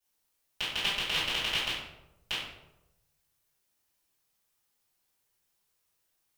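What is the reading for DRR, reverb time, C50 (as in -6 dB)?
-15.0 dB, 0.95 s, 0.5 dB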